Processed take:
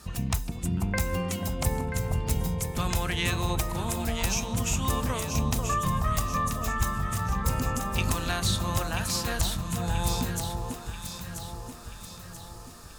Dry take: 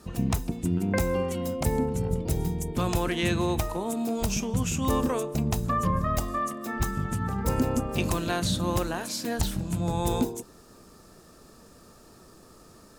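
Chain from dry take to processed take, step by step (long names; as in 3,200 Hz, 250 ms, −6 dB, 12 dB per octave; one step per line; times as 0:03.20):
parametric band 340 Hz −13 dB 2.2 octaves
in parallel at +0.5 dB: downward compressor, threshold −38 dBFS, peak gain reduction 14.5 dB
on the sum: delay that swaps between a low-pass and a high-pass 492 ms, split 1,100 Hz, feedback 69%, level −3.5 dB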